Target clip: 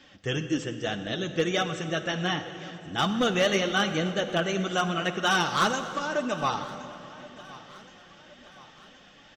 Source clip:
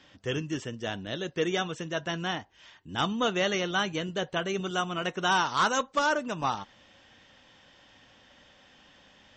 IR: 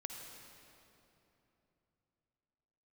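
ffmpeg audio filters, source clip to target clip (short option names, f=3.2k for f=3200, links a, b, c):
-filter_complex "[0:a]asettb=1/sr,asplit=3[a][b][c];[a]atrim=end=5.684[d];[b]atrim=start=5.68:end=6.15,asetpts=PTS-STARTPTS,afade=t=in:d=0.004:c=qsin,afade=t=out:st=0.466:d=0.004:c=qsin,acompressor=threshold=-33dB:ratio=4[e];[c]atrim=start=6.146[f];[d][e]acrossfade=d=0.004:c1=hsin:c2=qsin[g];[g][f]acrossfade=d=0.004:c1=qsin:c2=hsin,flanger=delay=3.2:depth=4:regen=35:speed=1.9:shape=triangular,asoftclip=type=hard:threshold=-23.5dB,asuperstop=centerf=970:order=4:qfactor=7.6,aecho=1:1:1070|2140|3210|4280:0.1|0.05|0.025|0.0125,asplit=2[h][i];[1:a]atrim=start_sample=2205[j];[i][j]afir=irnorm=-1:irlink=0,volume=1.5dB[k];[h][k]amix=inputs=2:normalize=0,volume=2dB"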